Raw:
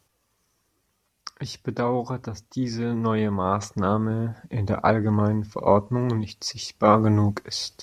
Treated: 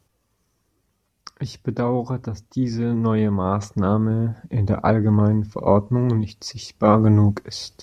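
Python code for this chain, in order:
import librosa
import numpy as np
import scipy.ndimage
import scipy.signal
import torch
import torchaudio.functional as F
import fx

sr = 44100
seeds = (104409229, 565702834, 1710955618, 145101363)

y = fx.low_shelf(x, sr, hz=490.0, db=8.5)
y = y * librosa.db_to_amplitude(-2.5)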